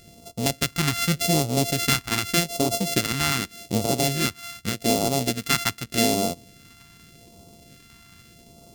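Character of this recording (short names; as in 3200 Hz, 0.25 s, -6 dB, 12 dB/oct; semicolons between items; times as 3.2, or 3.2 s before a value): a buzz of ramps at a fixed pitch in blocks of 64 samples; phasing stages 2, 0.84 Hz, lowest notch 530–1600 Hz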